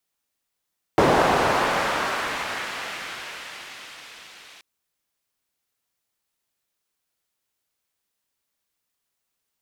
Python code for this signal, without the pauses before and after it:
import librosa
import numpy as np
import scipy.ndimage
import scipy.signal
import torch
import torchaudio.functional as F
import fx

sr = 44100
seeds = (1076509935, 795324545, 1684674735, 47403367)

y = fx.riser_noise(sr, seeds[0], length_s=3.63, colour='pink', kind='bandpass', start_hz=510.0, end_hz=3000.0, q=0.95, swell_db=-31.5, law='linear')